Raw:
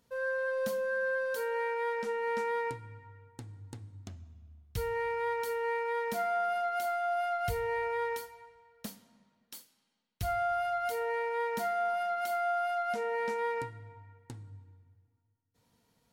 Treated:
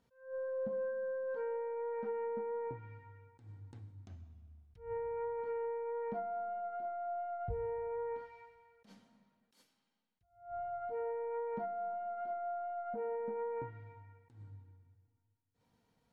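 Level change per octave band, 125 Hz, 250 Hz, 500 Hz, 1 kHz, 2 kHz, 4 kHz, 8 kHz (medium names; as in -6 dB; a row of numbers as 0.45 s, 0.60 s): -6.0 dB, -4.5 dB, -5.0 dB, -9.0 dB, -19.0 dB, under -25 dB, under -30 dB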